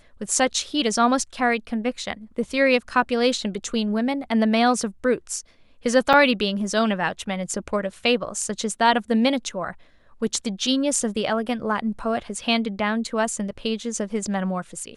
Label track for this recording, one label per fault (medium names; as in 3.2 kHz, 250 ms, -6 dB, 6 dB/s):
6.130000	6.140000	dropout 5.7 ms